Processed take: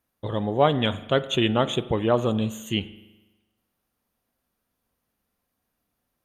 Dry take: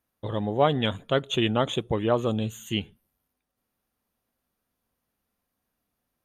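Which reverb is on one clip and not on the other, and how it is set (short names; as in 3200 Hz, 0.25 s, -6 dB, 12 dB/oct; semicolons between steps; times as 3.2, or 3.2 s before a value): spring tank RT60 1.1 s, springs 41 ms, chirp 55 ms, DRR 14.5 dB; gain +2 dB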